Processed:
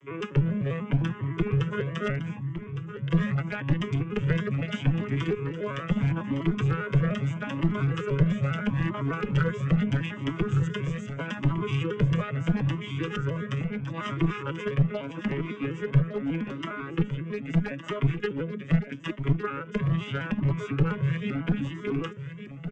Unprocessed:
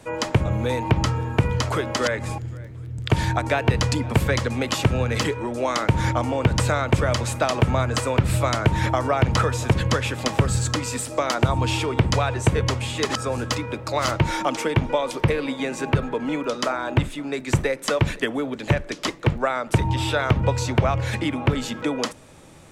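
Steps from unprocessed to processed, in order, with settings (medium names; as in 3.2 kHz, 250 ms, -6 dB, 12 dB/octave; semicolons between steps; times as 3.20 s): vocoder on a broken chord minor triad, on C#3, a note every 100 ms; peaking EQ 3.2 kHz +10 dB 0.61 oct; in parallel at -2.5 dB: peak limiter -15 dBFS, peak gain reduction 8.5 dB; on the sum: static phaser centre 1.8 kHz, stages 4; one-sided clip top -18.5 dBFS; distance through air 58 m; on a send: delay 1160 ms -10.5 dB; on the sum: Shepard-style flanger rising 0.78 Hz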